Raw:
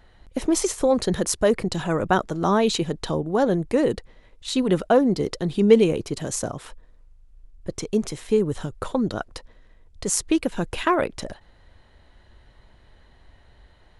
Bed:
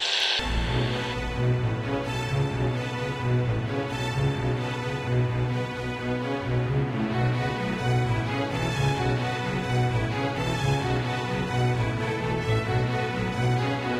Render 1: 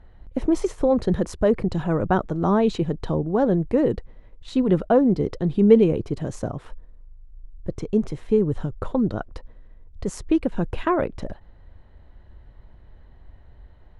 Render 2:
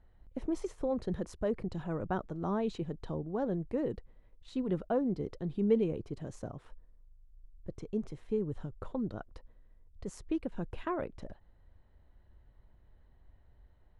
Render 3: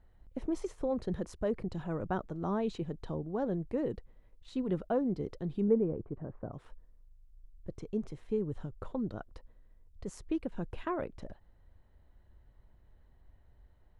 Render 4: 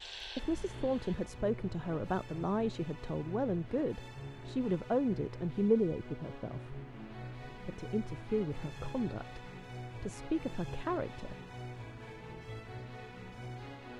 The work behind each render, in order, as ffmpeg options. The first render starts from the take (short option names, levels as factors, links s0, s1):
-af "lowpass=f=1100:p=1,lowshelf=f=160:g=7"
-af "volume=0.211"
-filter_complex "[0:a]asettb=1/sr,asplit=3[s0][s1][s2];[s0]atrim=end=5.684[s3];[s1]atrim=start=5.68:end=6.53,asetpts=PTS-STARTPTS,afade=t=in:d=0.004:c=qsin,afade=t=out:st=0.846:d=0.004:c=qsin,lowpass=f=1500:w=0.5412,lowpass=f=1500:w=1.3066[s4];[s2]atrim=start=6.526[s5];[s3][s4]acrossfade=d=0.004:c1=hsin:c2=qsin[s6];[s6][s5]acrossfade=d=0.004:c1=qsin:c2=hsin"
-filter_complex "[1:a]volume=0.0944[s0];[0:a][s0]amix=inputs=2:normalize=0"